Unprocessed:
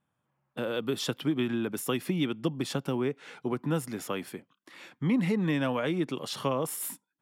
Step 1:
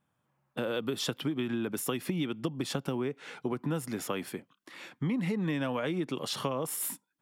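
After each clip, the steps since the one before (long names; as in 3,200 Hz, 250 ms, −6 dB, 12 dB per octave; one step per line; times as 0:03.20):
downward compressor, threshold −30 dBFS, peak gain reduction 8 dB
level +2 dB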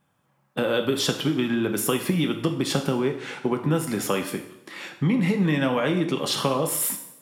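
coupled-rooms reverb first 0.65 s, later 1.7 s, from −18 dB, DRR 4.5 dB
level +8 dB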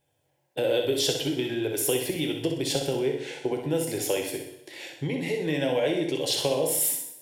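phaser with its sweep stopped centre 500 Hz, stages 4
flutter between parallel walls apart 10.8 metres, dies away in 0.55 s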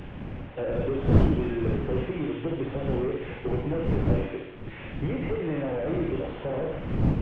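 linear delta modulator 16 kbit/s, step −41.5 dBFS
wind on the microphone 190 Hz −29 dBFS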